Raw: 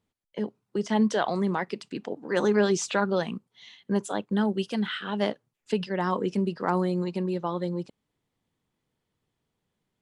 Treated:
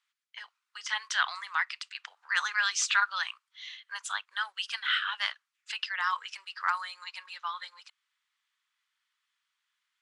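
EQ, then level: steep high-pass 1200 Hz 36 dB/oct; air absorption 56 m; +7.0 dB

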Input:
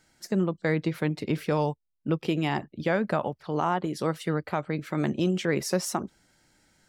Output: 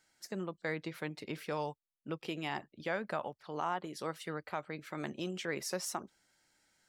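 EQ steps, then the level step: low shelf 390 Hz -11.5 dB; -6.5 dB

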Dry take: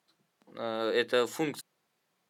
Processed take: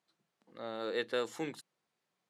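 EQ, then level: LPF 10000 Hz 12 dB/oct; -7.0 dB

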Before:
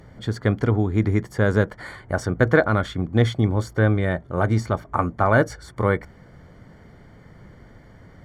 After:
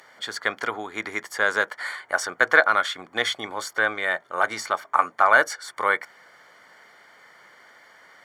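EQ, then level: HPF 1100 Hz 12 dB/oct; +7.5 dB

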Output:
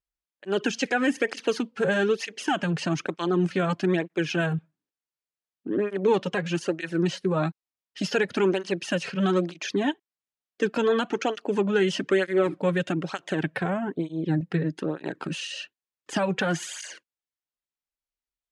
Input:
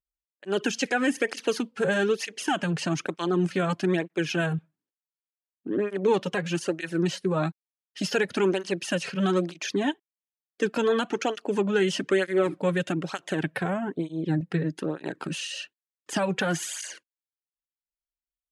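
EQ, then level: air absorption 50 m; +1.0 dB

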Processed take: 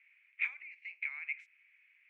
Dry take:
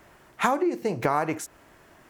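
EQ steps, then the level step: Butterworth band-pass 2300 Hz, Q 5.5; tilt +2 dB/oct; +1.0 dB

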